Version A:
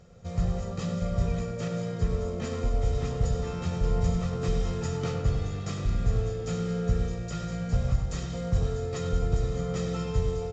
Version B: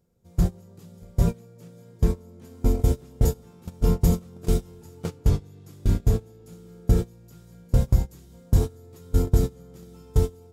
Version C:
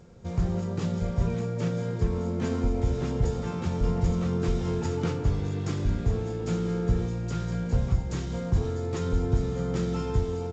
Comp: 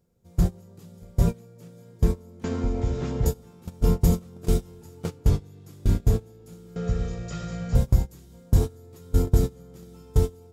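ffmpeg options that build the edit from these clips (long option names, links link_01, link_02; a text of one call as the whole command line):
ffmpeg -i take0.wav -i take1.wav -i take2.wav -filter_complex "[1:a]asplit=3[link_01][link_02][link_03];[link_01]atrim=end=2.442[link_04];[2:a]atrim=start=2.438:end=3.262[link_05];[link_02]atrim=start=3.258:end=6.762[link_06];[0:a]atrim=start=6.758:end=7.752[link_07];[link_03]atrim=start=7.748[link_08];[link_04][link_05]acrossfade=duration=0.004:curve1=hsin:curve2=hsin[link_09];[link_09][link_06]acrossfade=duration=0.004:curve1=hsin:curve2=hsin[link_10];[link_10][link_07]acrossfade=duration=0.004:curve1=hsin:curve2=hsin[link_11];[link_11][link_08]acrossfade=duration=0.004:curve1=hsin:curve2=hsin" out.wav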